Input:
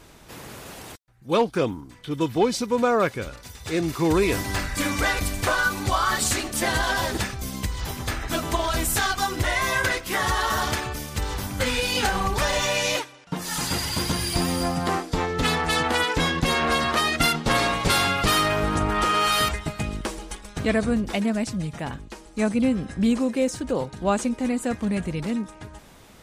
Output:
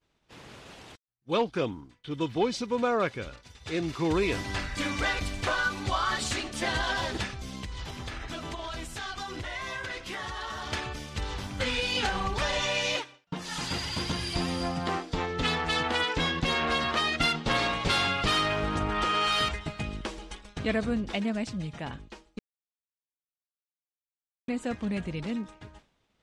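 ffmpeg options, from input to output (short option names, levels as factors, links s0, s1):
-filter_complex "[0:a]asettb=1/sr,asplit=3[s0][s1][s2];[s0]atrim=end=7.284[s3];[s1]atrim=start=7.28:end=10.73,asetpts=PTS-STARTPTS,afade=t=in:d=0.004:c=qsin,afade=t=out:st=3.446:d=0.004:c=qsin,acompressor=threshold=0.0447:ratio=6:attack=3.2:release=140:knee=1:detection=peak[s4];[s2]atrim=start=10.726[s5];[s3][s4]acrossfade=d=0.004:c1=hsin:c2=qsin[s6];[s6][s5]acrossfade=d=0.004:c1=qsin:c2=hsin,asplit=3[s7][s8][s9];[s7]atrim=end=22.39,asetpts=PTS-STARTPTS,afade=t=out:st=22.386:d=0.004:c=hsin[s10];[s8]atrim=start=22.39:end=24.48,asetpts=PTS-STARTPTS,volume=0[s11];[s9]atrim=start=24.48,asetpts=PTS-STARTPTS,afade=t=in:d=0.004:c=hsin[s12];[s10][s11][s12]concat=n=3:v=0:a=1,lowpass=6100,equalizer=f=3100:w=1.5:g=4,agate=range=0.0224:threshold=0.0141:ratio=3:detection=peak,volume=0.501"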